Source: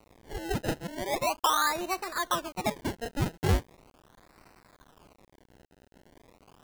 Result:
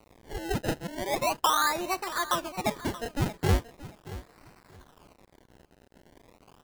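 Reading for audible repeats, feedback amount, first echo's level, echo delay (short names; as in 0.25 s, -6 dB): 2, 21%, -16.0 dB, 0.628 s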